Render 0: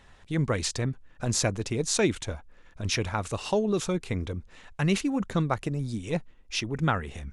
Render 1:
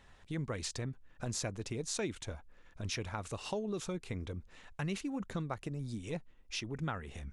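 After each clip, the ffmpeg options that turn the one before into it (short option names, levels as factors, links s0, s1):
-af "acompressor=threshold=0.0224:ratio=2,volume=0.531"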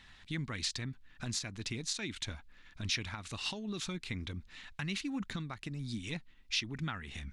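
-af "alimiter=level_in=1.78:limit=0.0631:level=0:latency=1:release=258,volume=0.562,equalizer=f=250:t=o:w=1:g=4,equalizer=f=500:t=o:w=1:g=-10,equalizer=f=2000:t=o:w=1:g=6,equalizer=f=4000:t=o:w=1:g=10"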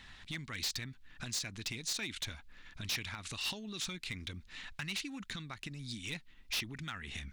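-filter_complex "[0:a]acrossover=split=1700[s0][s1];[s0]acompressor=threshold=0.00447:ratio=5[s2];[s2][s1]amix=inputs=2:normalize=0,asoftclip=type=hard:threshold=0.0168,volume=1.5"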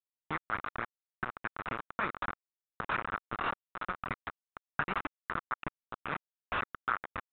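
-af "aresample=8000,acrusher=bits=5:mix=0:aa=0.000001,aresample=44100,lowpass=f=1300:t=q:w=3.9,volume=1.88"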